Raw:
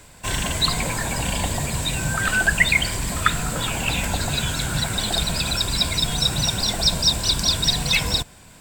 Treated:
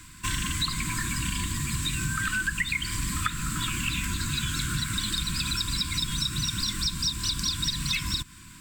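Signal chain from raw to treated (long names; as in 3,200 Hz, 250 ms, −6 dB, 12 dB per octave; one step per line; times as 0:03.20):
downward compressor 6 to 1, threshold −25 dBFS, peak gain reduction 13.5 dB
brick-wall band-stop 360–970 Hz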